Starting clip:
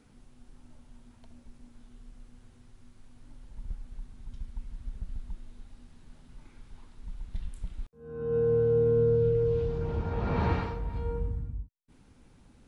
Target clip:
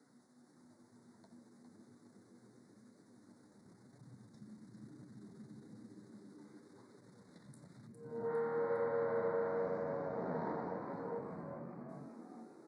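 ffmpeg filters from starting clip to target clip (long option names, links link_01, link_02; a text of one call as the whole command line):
ffmpeg -i in.wav -filter_complex "[0:a]acrossover=split=250|1000[link_01][link_02][link_03];[link_01]acompressor=threshold=-34dB:ratio=4[link_04];[link_02]acompressor=threshold=-28dB:ratio=4[link_05];[link_03]acompressor=threshold=-59dB:ratio=4[link_06];[link_04][link_05][link_06]amix=inputs=3:normalize=0,aeval=exprs='(tanh(44.7*val(0)+0.65)-tanh(0.65))/44.7':channel_layout=same,asuperstop=centerf=2800:order=8:qfactor=1.6,asplit=7[link_07][link_08][link_09][link_10][link_11][link_12][link_13];[link_08]adelay=406,afreqshift=91,volume=-7dB[link_14];[link_09]adelay=812,afreqshift=182,volume=-13dB[link_15];[link_10]adelay=1218,afreqshift=273,volume=-19dB[link_16];[link_11]adelay=1624,afreqshift=364,volume=-25.1dB[link_17];[link_12]adelay=2030,afreqshift=455,volume=-31.1dB[link_18];[link_13]adelay=2436,afreqshift=546,volume=-37.1dB[link_19];[link_07][link_14][link_15][link_16][link_17][link_18][link_19]amix=inputs=7:normalize=0,flanger=delay=6.9:depth=6.9:regen=-39:speed=1:shape=sinusoidal,highpass=frequency=170:width=0.5412,highpass=frequency=170:width=1.3066,volume=2.5dB" out.wav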